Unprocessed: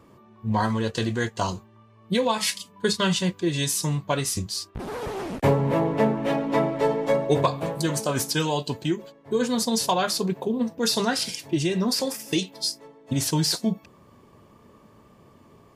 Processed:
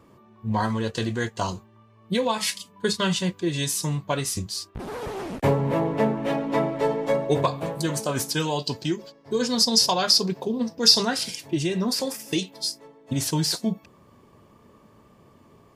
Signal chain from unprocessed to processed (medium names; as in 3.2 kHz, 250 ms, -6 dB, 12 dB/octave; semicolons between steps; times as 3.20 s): 8.59–11.03 s: peaking EQ 5.1 kHz +15 dB 0.47 oct; trim -1 dB